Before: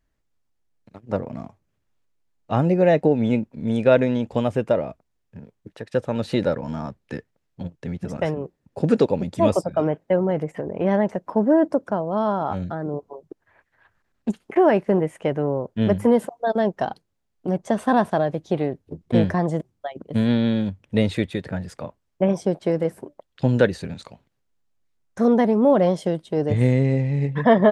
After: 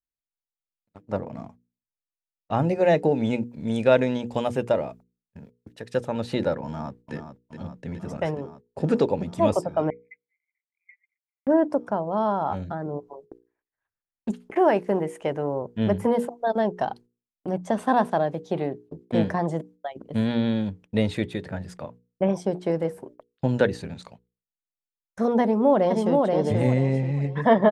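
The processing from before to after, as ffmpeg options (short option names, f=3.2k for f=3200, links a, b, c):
-filter_complex "[0:a]asettb=1/sr,asplit=3[a][b][c];[a]atrim=end=2.694[d];[b]atrim=start=2.69:end=6.08,asetpts=PTS-STARTPTS,afade=t=in:d=0.004:c=qsin,afade=t=out:st=3.386:d=0.004:c=qsin,highshelf=f=3.5k:g=8[e];[c]atrim=start=6.076[f];[d][e]acrossfade=d=0.004:c1=hsin:c2=qsin[g];[g][f]acrossfade=d=0.004:c1=qsin:c2=hsin,asplit=2[h][i];[i]afade=t=in:st=6.65:d=0.01,afade=t=out:st=7.14:d=0.01,aecho=0:1:420|840|1260|1680|2100|2520|2940|3360|3780|4200|4620|5040:0.398107|0.318486|0.254789|0.203831|0.163065|0.130452|0.104361|0.0834891|0.0667913|0.053433|0.0427464|0.0341971[j];[h][j]amix=inputs=2:normalize=0,asettb=1/sr,asplit=3[k][l][m];[k]atrim=end=9.904[n];[l]atrim=start=9.9:end=11.47,asetpts=PTS-STARTPTS,afade=t=in:d=0.004:c=qsin,afade=t=out:st=1.566:d=0.004:c=qsin,asuperpass=centerf=2200:order=8:qfactor=5.6[o];[m]atrim=start=11.466[p];[n][o]acrossfade=d=0.004:c1=hsin:c2=qsin[q];[q][p]acrossfade=d=0.004:c1=qsin:c2=hsin,asettb=1/sr,asplit=3[r][s][t];[r]atrim=end=14.554[u];[s]atrim=start=14.55:end=15.62,asetpts=PTS-STARTPTS,afade=t=in:d=0.004:c=qsin,afade=t=out:st=1.066:d=0.004:c=qsin,bass=f=250:g=-4,treble=f=4k:g=5[v];[t]atrim=start=15.616[w];[u][v]acrossfade=d=0.004:c1=hsin:c2=qsin[x];[x][w]acrossfade=d=0.004:c1=qsin:c2=hsin,asettb=1/sr,asplit=3[y][z][aa];[y]atrim=end=17.844[ab];[z]atrim=start=17.84:end=19.73,asetpts=PTS-STARTPTS,afade=t=in:d=0.004:c=qsin,afade=t=out:st=1.886:d=0.004:c=qsin,highpass=120[ac];[aa]atrim=start=19.726[ad];[ab][ac]acrossfade=d=0.004:c1=hsin:c2=qsin[ae];[ae][ad]acrossfade=d=0.004:c1=qsin:c2=hsin,asplit=2[af][ag];[ag]afade=t=in:st=25.42:d=0.01,afade=t=out:st=26.15:d=0.01,aecho=0:1:480|960|1440|1920:0.749894|0.224968|0.0674905|0.0202471[ah];[af][ah]amix=inputs=2:normalize=0,adynamicequalizer=threshold=0.0141:dfrequency=870:dqfactor=3:tfrequency=870:tqfactor=3:attack=5:release=100:ratio=0.375:range=2:mode=boostabove:tftype=bell,agate=range=-25dB:threshold=-43dB:ratio=16:detection=peak,bandreject=f=60:t=h:w=6,bandreject=f=120:t=h:w=6,bandreject=f=180:t=h:w=6,bandreject=f=240:t=h:w=6,bandreject=f=300:t=h:w=6,bandreject=f=360:t=h:w=6,bandreject=f=420:t=h:w=6,bandreject=f=480:t=h:w=6,volume=-3dB"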